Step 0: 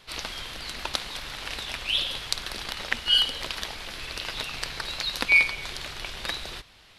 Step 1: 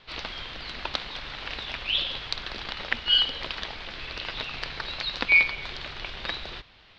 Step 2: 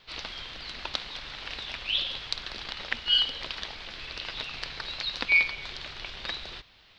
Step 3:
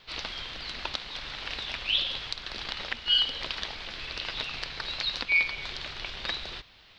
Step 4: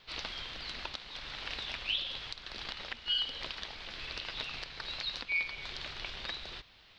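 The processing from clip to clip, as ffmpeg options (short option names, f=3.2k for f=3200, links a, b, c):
-af "lowpass=f=4.4k:w=0.5412,lowpass=f=4.4k:w=1.3066"
-af "aemphasis=mode=production:type=50fm,volume=-4.5dB"
-af "alimiter=limit=-15dB:level=0:latency=1:release=276,volume=2dB"
-af "alimiter=limit=-18dB:level=0:latency=1:release=412,volume=-4dB"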